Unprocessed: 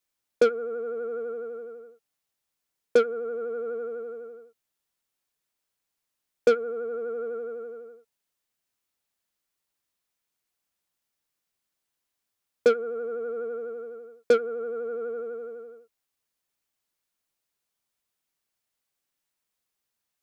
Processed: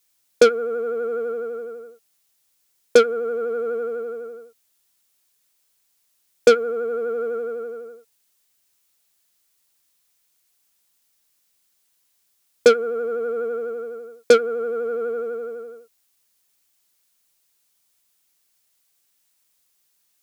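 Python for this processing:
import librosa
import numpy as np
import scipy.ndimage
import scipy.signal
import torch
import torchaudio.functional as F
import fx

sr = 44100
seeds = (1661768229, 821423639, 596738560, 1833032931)

y = fx.high_shelf(x, sr, hz=3100.0, db=10.5)
y = y * 10.0 ** (6.5 / 20.0)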